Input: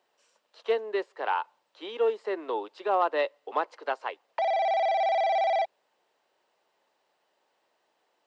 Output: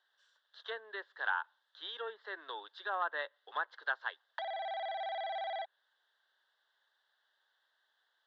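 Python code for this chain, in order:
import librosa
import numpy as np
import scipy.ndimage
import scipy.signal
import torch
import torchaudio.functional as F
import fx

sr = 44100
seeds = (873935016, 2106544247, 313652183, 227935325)

y = fx.env_lowpass_down(x, sr, base_hz=2300.0, full_db=-24.0)
y = fx.double_bandpass(y, sr, hz=2400.0, octaves=1.1)
y = F.gain(torch.from_numpy(y), 6.5).numpy()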